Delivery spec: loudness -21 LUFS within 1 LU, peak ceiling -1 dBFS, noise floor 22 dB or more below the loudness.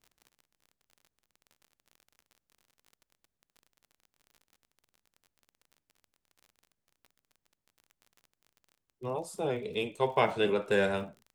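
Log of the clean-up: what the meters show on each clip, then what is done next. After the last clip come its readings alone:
ticks 36/s; loudness -31.0 LUFS; peak -12.0 dBFS; loudness target -21.0 LUFS
-> de-click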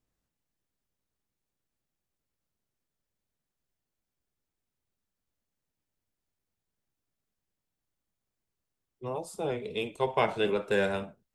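ticks 0/s; loudness -31.0 LUFS; peak -12.0 dBFS; loudness target -21.0 LUFS
-> gain +10 dB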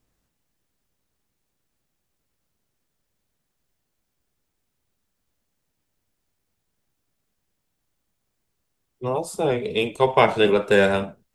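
loudness -21.0 LUFS; peak -2.0 dBFS; noise floor -77 dBFS

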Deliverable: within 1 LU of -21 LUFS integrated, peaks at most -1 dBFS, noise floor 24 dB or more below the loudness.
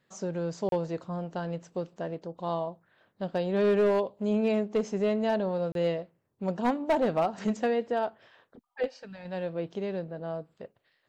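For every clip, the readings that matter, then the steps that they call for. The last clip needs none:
clipped 0.8%; flat tops at -19.5 dBFS; dropouts 2; longest dropout 32 ms; loudness -30.5 LUFS; peak -19.5 dBFS; loudness target -21.0 LUFS
-> clip repair -19.5 dBFS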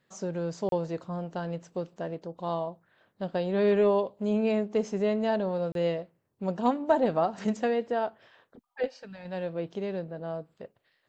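clipped 0.0%; dropouts 2; longest dropout 32 ms
-> interpolate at 0.69/5.72, 32 ms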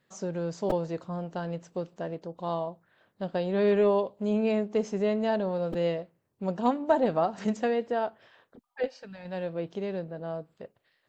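dropouts 0; loudness -30.0 LUFS; peak -11.0 dBFS; loudness target -21.0 LUFS
-> gain +9 dB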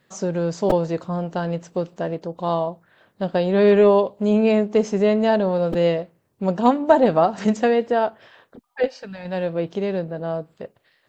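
loudness -21.0 LUFS; peak -2.0 dBFS; noise floor -66 dBFS

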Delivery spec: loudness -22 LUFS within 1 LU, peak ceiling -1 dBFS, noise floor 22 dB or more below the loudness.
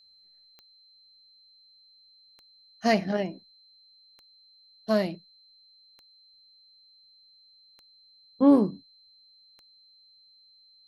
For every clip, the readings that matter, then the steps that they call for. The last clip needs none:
clicks 6; steady tone 4100 Hz; tone level -56 dBFS; loudness -25.0 LUFS; peak -9.0 dBFS; loudness target -22.0 LUFS
-> de-click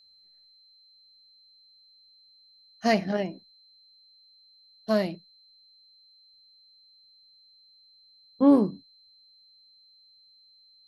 clicks 0; steady tone 4100 Hz; tone level -56 dBFS
-> notch 4100 Hz, Q 30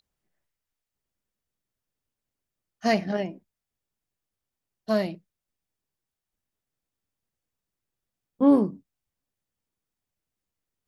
steady tone none; loudness -25.0 LUFS; peak -9.0 dBFS; loudness target -22.0 LUFS
-> gain +3 dB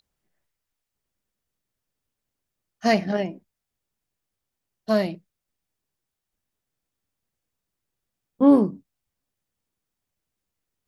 loudness -22.0 LUFS; peak -6.0 dBFS; noise floor -84 dBFS

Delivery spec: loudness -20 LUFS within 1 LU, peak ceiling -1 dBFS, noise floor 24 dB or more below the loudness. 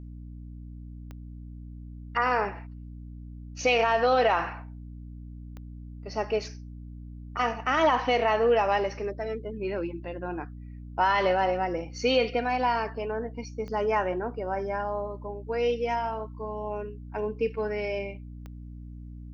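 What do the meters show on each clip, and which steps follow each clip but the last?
clicks 4; hum 60 Hz; harmonics up to 300 Hz; hum level -39 dBFS; loudness -28.0 LUFS; peak -12.0 dBFS; loudness target -20.0 LUFS
-> de-click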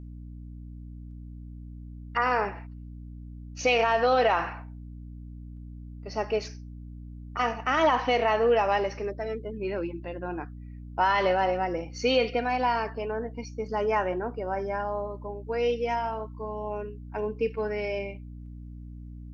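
clicks 0; hum 60 Hz; harmonics up to 300 Hz; hum level -39 dBFS
-> de-hum 60 Hz, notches 5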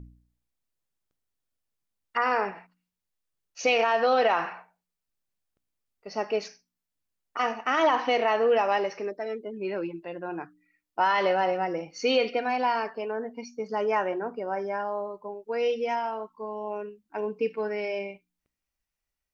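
hum none; loudness -28.0 LUFS; peak -12.5 dBFS; loudness target -20.0 LUFS
-> gain +8 dB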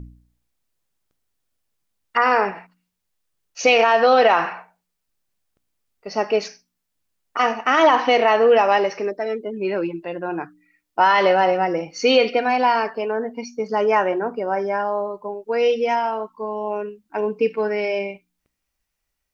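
loudness -20.0 LUFS; peak -4.5 dBFS; noise floor -78 dBFS

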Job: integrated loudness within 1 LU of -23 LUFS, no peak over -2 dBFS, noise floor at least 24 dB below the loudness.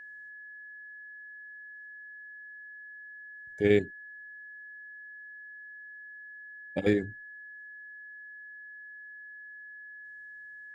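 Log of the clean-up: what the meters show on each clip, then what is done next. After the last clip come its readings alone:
steady tone 1700 Hz; tone level -44 dBFS; loudness -37.0 LUFS; peak -10.0 dBFS; loudness target -23.0 LUFS
-> notch 1700 Hz, Q 30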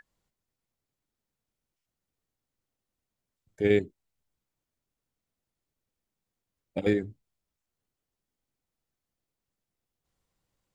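steady tone none; loudness -28.0 LUFS; peak -10.0 dBFS; loudness target -23.0 LUFS
-> gain +5 dB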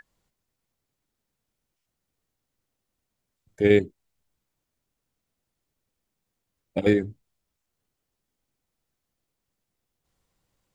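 loudness -23.0 LUFS; peak -5.0 dBFS; noise floor -83 dBFS

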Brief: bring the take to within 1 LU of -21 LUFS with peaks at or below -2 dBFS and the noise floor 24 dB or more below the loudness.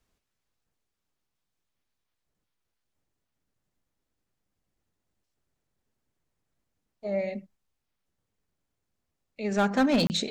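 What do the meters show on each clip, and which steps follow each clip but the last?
clipped 0.3%; flat tops at -18.5 dBFS; dropouts 1; longest dropout 29 ms; loudness -27.0 LUFS; peak -18.5 dBFS; loudness target -21.0 LUFS
-> clip repair -18.5 dBFS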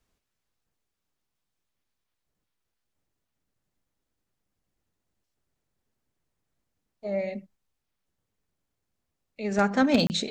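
clipped 0.0%; dropouts 1; longest dropout 29 ms
-> interpolate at 10.07, 29 ms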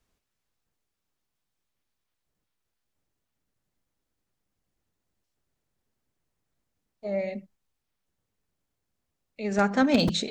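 dropouts 0; loudness -26.0 LUFS; peak -9.5 dBFS; loudness target -21.0 LUFS
-> gain +5 dB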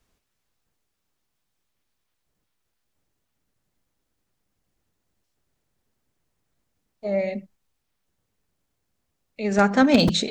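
loudness -21.0 LUFS; peak -4.5 dBFS; noise floor -77 dBFS

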